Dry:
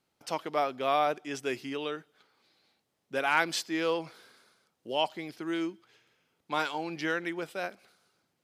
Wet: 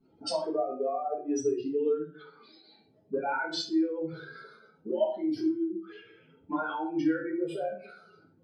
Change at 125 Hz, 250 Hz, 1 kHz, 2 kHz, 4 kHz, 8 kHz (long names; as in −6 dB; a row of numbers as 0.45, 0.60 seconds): −1.5, +6.0, −4.0, −6.5, −4.0, −1.5 decibels